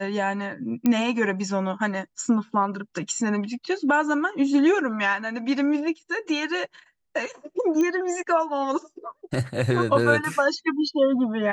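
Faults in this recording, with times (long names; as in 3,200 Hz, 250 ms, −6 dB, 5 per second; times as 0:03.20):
0:00.86: click −10 dBFS
0:07.81: click −15 dBFS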